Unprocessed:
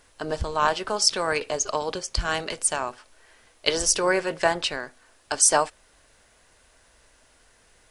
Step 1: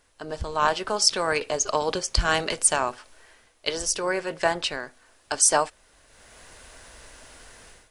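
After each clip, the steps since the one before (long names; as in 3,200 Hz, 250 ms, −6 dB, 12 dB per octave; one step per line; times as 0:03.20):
automatic gain control gain up to 17 dB
level −6 dB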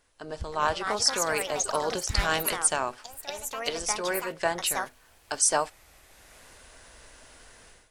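delay with pitch and tempo change per echo 368 ms, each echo +4 semitones, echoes 2, each echo −6 dB
level −4 dB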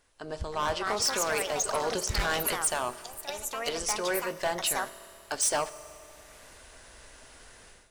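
gain into a clipping stage and back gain 22.5 dB
convolution reverb RT60 2.7 s, pre-delay 3 ms, DRR 15 dB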